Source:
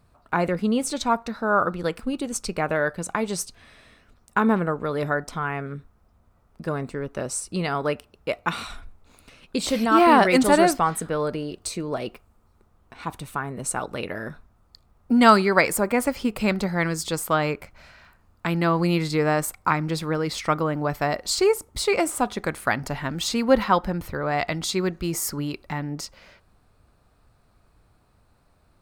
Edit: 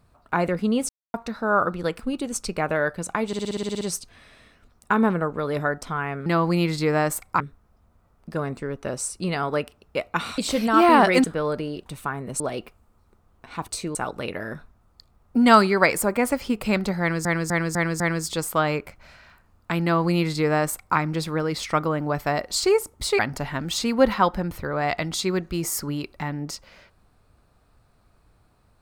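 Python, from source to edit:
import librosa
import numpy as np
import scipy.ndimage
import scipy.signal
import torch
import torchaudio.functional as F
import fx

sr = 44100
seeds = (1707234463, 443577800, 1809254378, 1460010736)

y = fx.edit(x, sr, fx.silence(start_s=0.89, length_s=0.25),
    fx.stutter(start_s=3.27, slice_s=0.06, count=10),
    fx.cut(start_s=8.7, length_s=0.86),
    fx.cut(start_s=10.42, length_s=0.57),
    fx.swap(start_s=11.61, length_s=0.27, other_s=13.16, other_length_s=0.54),
    fx.repeat(start_s=16.75, length_s=0.25, count=5),
    fx.duplicate(start_s=18.58, length_s=1.14, to_s=5.72),
    fx.cut(start_s=21.94, length_s=0.75), tone=tone)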